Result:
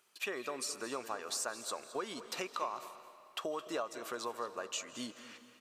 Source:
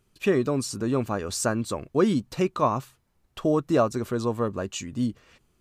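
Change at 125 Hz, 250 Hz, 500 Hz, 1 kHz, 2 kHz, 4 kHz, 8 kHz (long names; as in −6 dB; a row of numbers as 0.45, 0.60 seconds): −32.0, −21.5, −15.5, −10.5, −6.5, −4.0, −6.0 decibels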